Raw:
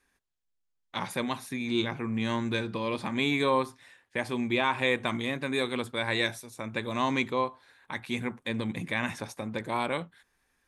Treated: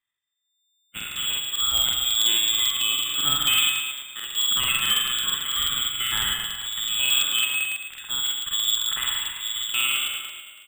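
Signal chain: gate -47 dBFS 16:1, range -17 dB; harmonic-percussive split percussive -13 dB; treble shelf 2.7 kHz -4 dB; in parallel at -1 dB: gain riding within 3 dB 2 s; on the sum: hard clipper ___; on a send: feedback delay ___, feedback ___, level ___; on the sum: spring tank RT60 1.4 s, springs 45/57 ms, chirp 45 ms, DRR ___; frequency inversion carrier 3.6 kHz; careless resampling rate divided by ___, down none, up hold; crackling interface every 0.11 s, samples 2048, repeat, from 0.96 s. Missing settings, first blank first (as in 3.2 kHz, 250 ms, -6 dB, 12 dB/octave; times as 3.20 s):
-16.5 dBFS, 144 ms, 45%, -8.5 dB, 1.5 dB, 4×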